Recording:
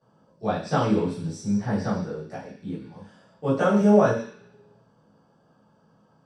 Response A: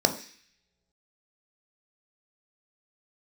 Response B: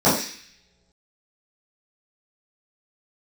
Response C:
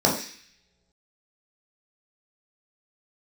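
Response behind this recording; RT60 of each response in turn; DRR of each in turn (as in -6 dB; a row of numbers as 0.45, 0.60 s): B; not exponential, not exponential, not exponential; 5.5, -13.5, -3.5 dB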